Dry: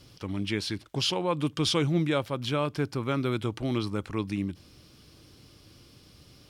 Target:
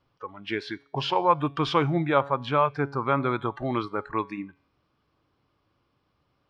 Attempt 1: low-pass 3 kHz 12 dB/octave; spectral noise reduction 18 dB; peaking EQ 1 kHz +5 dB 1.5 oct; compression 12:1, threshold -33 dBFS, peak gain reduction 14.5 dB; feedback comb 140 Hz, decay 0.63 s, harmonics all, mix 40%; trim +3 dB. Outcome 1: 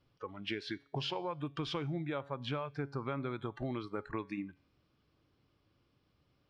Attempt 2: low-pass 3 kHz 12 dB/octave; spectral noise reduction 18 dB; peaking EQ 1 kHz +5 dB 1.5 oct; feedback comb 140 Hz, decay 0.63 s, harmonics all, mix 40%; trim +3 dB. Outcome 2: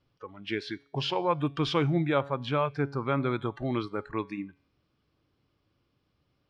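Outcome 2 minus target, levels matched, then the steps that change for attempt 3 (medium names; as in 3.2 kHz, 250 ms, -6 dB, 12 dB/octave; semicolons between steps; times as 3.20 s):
1 kHz band -4.0 dB
change: peaking EQ 1 kHz +13.5 dB 1.5 oct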